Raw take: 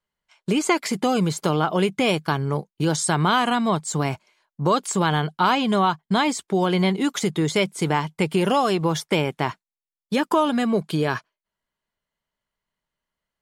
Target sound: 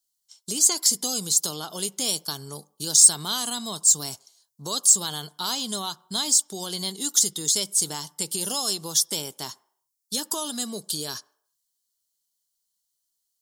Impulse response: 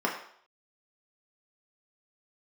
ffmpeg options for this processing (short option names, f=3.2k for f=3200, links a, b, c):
-filter_complex "[0:a]aexciter=amount=14:drive=9.2:freq=3.8k,asplit=2[a][b];[b]bass=f=250:g=9,treble=f=4k:g=-5[c];[1:a]atrim=start_sample=2205[d];[c][d]afir=irnorm=-1:irlink=0,volume=-27dB[e];[a][e]amix=inputs=2:normalize=0,volume=-15.5dB"